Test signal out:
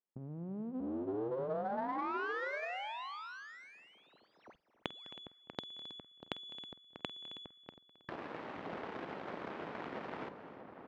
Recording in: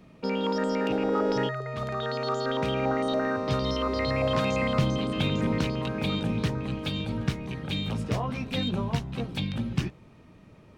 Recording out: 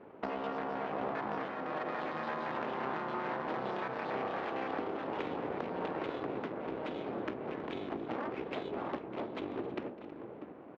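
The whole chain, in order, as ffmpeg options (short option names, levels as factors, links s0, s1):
-filter_complex "[0:a]bandreject=f=60:t=h:w=6,bandreject=f=120:t=h:w=6,bandreject=f=180:t=h:w=6,bandreject=f=240:t=h:w=6,bandreject=f=300:t=h:w=6,bandreject=f=360:t=h:w=6,bandreject=f=420:t=h:w=6,bandreject=f=480:t=h:w=6,bandreject=f=540:t=h:w=6,acompressor=threshold=0.0126:ratio=6,asplit=2[s0][s1];[s1]adelay=641.4,volume=0.398,highshelf=f=4000:g=-14.4[s2];[s0][s2]amix=inputs=2:normalize=0,aeval=exprs='abs(val(0))':c=same,adynamicsmooth=sensitivity=7:basefreq=1000,highpass=240,lowpass=3800,asplit=2[s3][s4];[s4]aecho=0:1:48|205|267|320:0.119|0.1|0.126|0.126[s5];[s3][s5]amix=inputs=2:normalize=0,volume=2.99"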